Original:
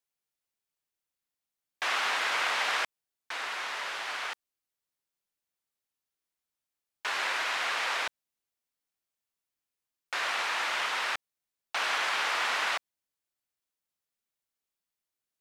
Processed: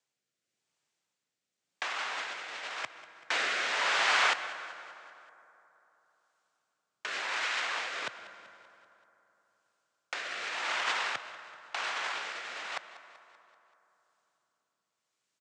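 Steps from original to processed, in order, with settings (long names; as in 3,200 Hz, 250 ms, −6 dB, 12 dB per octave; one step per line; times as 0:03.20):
elliptic band-pass filter 120–7,700 Hz, stop band 40 dB
compressor whose output falls as the input rises −35 dBFS, ratio −0.5
rotating-speaker cabinet horn 0.9 Hz
repeating echo 192 ms, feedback 55%, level −17 dB
on a send at −13 dB: convolution reverb RT60 3.4 s, pre-delay 107 ms
on the sum: level +6 dB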